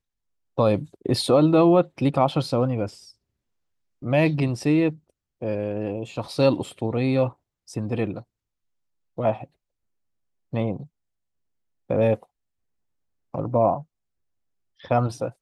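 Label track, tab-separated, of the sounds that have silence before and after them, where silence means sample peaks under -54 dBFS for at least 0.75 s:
4.020000	8.240000	sound
9.170000	9.470000	sound
10.520000	10.870000	sound
11.890000	12.260000	sound
13.330000	13.840000	sound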